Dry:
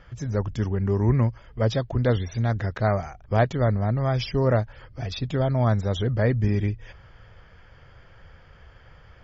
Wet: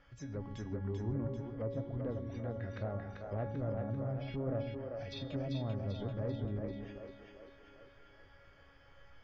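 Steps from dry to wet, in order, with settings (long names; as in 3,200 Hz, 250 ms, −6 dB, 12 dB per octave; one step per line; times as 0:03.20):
low-shelf EQ 290 Hz −4 dB
tuned comb filter 280 Hz, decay 0.69 s, mix 90%
treble cut that deepens with the level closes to 860 Hz, closed at −40 dBFS
dynamic equaliser 1,000 Hz, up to −7 dB, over −58 dBFS, Q 0.98
soft clipping −33.5 dBFS, distortion −23 dB
echo with a time of its own for lows and highs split 330 Hz, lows 133 ms, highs 391 ms, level −4 dB
level +5.5 dB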